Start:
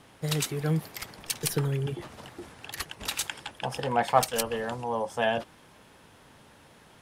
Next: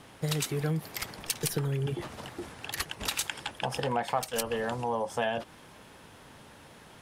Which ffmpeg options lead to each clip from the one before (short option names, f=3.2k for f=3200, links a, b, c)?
-af "acompressor=threshold=-30dB:ratio=4,volume=3dB"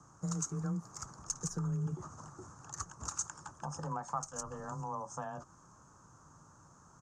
-af "firequalizer=gain_entry='entry(140,0);entry(200,-8);entry(300,-7);entry(430,-12);entry(660,-10);entry(1200,3);entry(2000,-26);entry(3400,-29);entry(6500,8);entry(11000,-30)':delay=0.05:min_phase=1,afreqshift=18,volume=-3.5dB"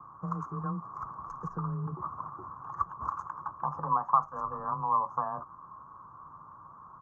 -af "lowpass=f=1.1k:t=q:w=9.6"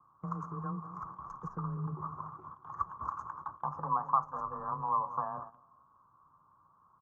-filter_complex "[0:a]asplit=2[a][b];[b]adelay=199,lowpass=f=1.2k:p=1,volume=-11dB,asplit=2[c][d];[d]adelay=199,lowpass=f=1.2k:p=1,volume=0.37,asplit=2[e][f];[f]adelay=199,lowpass=f=1.2k:p=1,volume=0.37,asplit=2[g][h];[h]adelay=199,lowpass=f=1.2k:p=1,volume=0.37[i];[a][c][e][g][i]amix=inputs=5:normalize=0,agate=range=-12dB:threshold=-42dB:ratio=16:detection=peak,volume=-3.5dB"